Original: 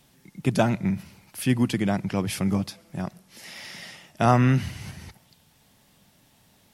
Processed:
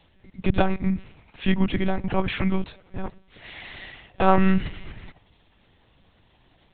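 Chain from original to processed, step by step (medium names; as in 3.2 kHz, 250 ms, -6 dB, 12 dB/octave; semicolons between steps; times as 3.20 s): 1.99–2.60 s: peaking EQ 520 Hz -> 3.5 kHz +8.5 dB 1.3 oct; monotone LPC vocoder at 8 kHz 190 Hz; trim +2 dB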